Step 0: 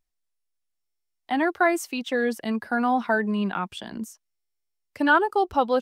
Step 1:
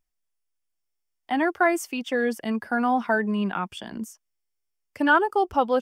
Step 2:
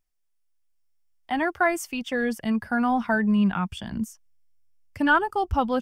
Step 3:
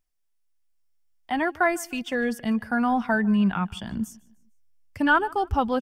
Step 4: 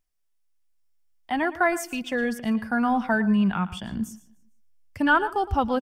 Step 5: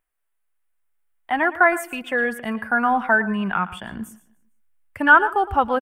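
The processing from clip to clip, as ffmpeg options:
ffmpeg -i in.wav -af "bandreject=frequency=4000:width=5.6" out.wav
ffmpeg -i in.wav -af "asubboost=boost=12:cutoff=120" out.wav
ffmpeg -i in.wav -af "aecho=1:1:151|302|453:0.0668|0.0274|0.0112" out.wav
ffmpeg -i in.wav -af "aecho=1:1:114:0.158" out.wav
ffmpeg -i in.wav -af "firequalizer=gain_entry='entry(210,0);entry(380,7);entry(1500,13);entry(5400,-8);entry(8900,6)':delay=0.05:min_phase=1,volume=-4dB" out.wav

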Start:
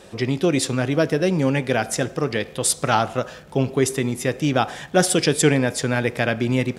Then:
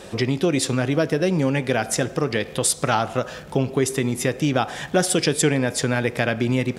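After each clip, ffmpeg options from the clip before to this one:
ffmpeg -i in.wav -af "acompressor=threshold=-27dB:ratio=2,volume=5.5dB" out.wav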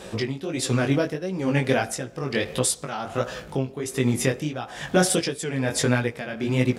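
ffmpeg -i in.wav -af "flanger=delay=15.5:depth=7.2:speed=1.5,tremolo=f=1.2:d=0.75,volume=3.5dB" out.wav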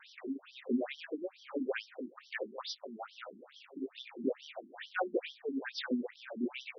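ffmpeg -i in.wav -af "bass=frequency=250:gain=5,treble=frequency=4000:gain=-3,acrusher=bits=8:dc=4:mix=0:aa=0.000001,afftfilt=real='re*between(b*sr/1024,250*pow(4300/250,0.5+0.5*sin(2*PI*2.3*pts/sr))/1.41,250*pow(4300/250,0.5+0.5*sin(2*PI*2.3*pts/sr))*1.41)':imag='im*between(b*sr/1024,250*pow(4300/250,0.5+0.5*sin(2*PI*2.3*pts/sr))/1.41,250*pow(4300/250,0.5+0.5*sin(2*PI*2.3*pts/sr))*1.41)':win_size=1024:overlap=0.75,volume=-6.5dB" out.wav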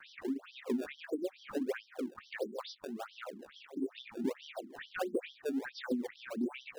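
ffmpeg -i in.wav -filter_complex "[0:a]highshelf=frequency=2900:gain=-9,acrossover=split=590|1200[link_01][link_02][link_03];[link_01]acompressor=threshold=-38dB:ratio=4[link_04];[link_02]acompressor=threshold=-54dB:ratio=4[link_05];[link_03]acompressor=threshold=-52dB:ratio=4[link_06];[link_04][link_05][link_06]amix=inputs=3:normalize=0,acrossover=split=510|820[link_07][link_08][link_09];[link_08]acrusher=samples=24:mix=1:aa=0.000001:lfo=1:lforange=38.4:lforate=1.5[link_10];[link_07][link_10][link_09]amix=inputs=3:normalize=0,volume=6dB" out.wav

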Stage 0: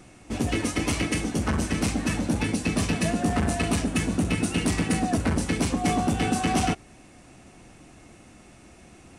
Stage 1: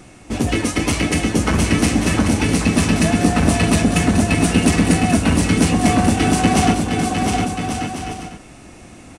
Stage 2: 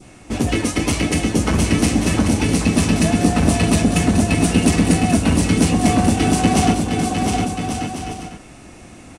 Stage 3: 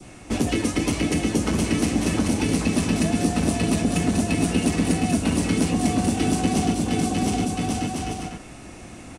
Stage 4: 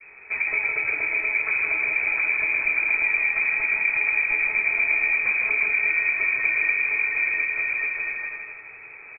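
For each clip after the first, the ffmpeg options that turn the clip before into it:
ffmpeg -i in.wav -af "aecho=1:1:710|1136|1392|1545|1637:0.631|0.398|0.251|0.158|0.1,volume=7dB" out.wav
ffmpeg -i in.wav -af "adynamicequalizer=threshold=0.0141:dfrequency=1600:dqfactor=1:tfrequency=1600:tqfactor=1:attack=5:release=100:ratio=0.375:range=2:mode=cutabove:tftype=bell" out.wav
ffmpeg -i in.wav -filter_complex "[0:a]acrossover=split=180|450|2900[link_01][link_02][link_03][link_04];[link_01]acompressor=threshold=-29dB:ratio=4[link_05];[link_02]acompressor=threshold=-21dB:ratio=4[link_06];[link_03]acompressor=threshold=-32dB:ratio=4[link_07];[link_04]acompressor=threshold=-32dB:ratio=4[link_08];[link_05][link_06][link_07][link_08]amix=inputs=4:normalize=0" out.wav
ffmpeg -i in.wav -af "aecho=1:1:161|322|483|644|805:0.596|0.256|0.11|0.0474|0.0204,lowpass=frequency=2200:width_type=q:width=0.5098,lowpass=frequency=2200:width_type=q:width=0.6013,lowpass=frequency=2200:width_type=q:width=0.9,lowpass=frequency=2200:width_type=q:width=2.563,afreqshift=-2600,volume=-3dB" out.wav

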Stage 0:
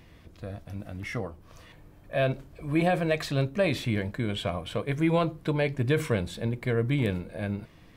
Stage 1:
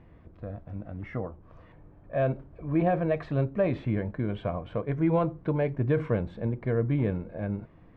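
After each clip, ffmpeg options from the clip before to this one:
ffmpeg -i in.wav -af "lowpass=1300" out.wav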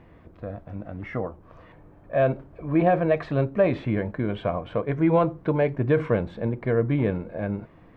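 ffmpeg -i in.wav -af "lowshelf=frequency=200:gain=-7,volume=6.5dB" out.wav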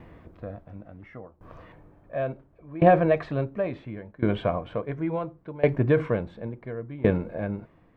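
ffmpeg -i in.wav -af "aeval=exprs='val(0)*pow(10,-21*if(lt(mod(0.71*n/s,1),2*abs(0.71)/1000),1-mod(0.71*n/s,1)/(2*abs(0.71)/1000),(mod(0.71*n/s,1)-2*abs(0.71)/1000)/(1-2*abs(0.71)/1000))/20)':channel_layout=same,volume=4.5dB" out.wav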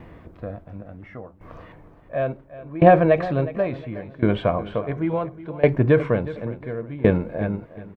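ffmpeg -i in.wav -af "aecho=1:1:363|726|1089:0.158|0.0523|0.0173,volume=4.5dB" out.wav

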